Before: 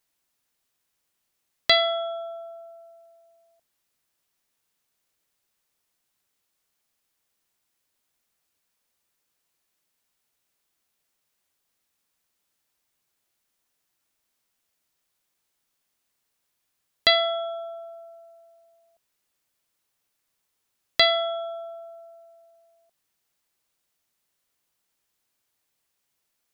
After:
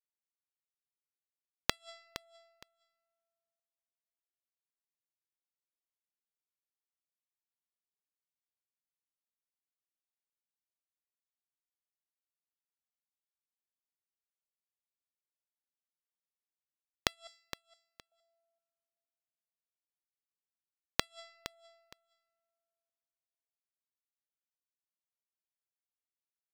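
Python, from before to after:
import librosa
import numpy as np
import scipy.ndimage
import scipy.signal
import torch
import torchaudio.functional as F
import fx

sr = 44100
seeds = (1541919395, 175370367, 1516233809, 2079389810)

p1 = fx.cheby_harmonics(x, sr, harmonics=(2, 3, 7), levels_db=(-18, -37, -17), full_scale_db=-3.0)
p2 = fx.differentiator(p1, sr, at=(17.27, 18.12))
p3 = fx.gate_flip(p2, sr, shuts_db=-9.0, range_db=-39)
p4 = p3 + fx.echo_feedback(p3, sr, ms=465, feedback_pct=20, wet_db=-13, dry=0)
y = F.gain(torch.from_numpy(p4), 1.0).numpy()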